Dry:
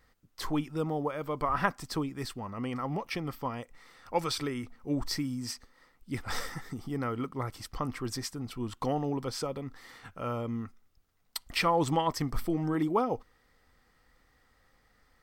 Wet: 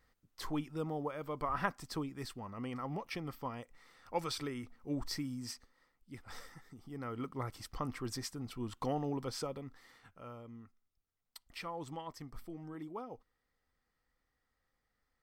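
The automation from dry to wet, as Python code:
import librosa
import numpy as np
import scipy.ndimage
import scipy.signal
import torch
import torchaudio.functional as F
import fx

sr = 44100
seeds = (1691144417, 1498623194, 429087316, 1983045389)

y = fx.gain(x, sr, db=fx.line((5.52, -6.5), (6.2, -15.0), (6.75, -15.0), (7.28, -5.0), (9.42, -5.0), (10.43, -16.5)))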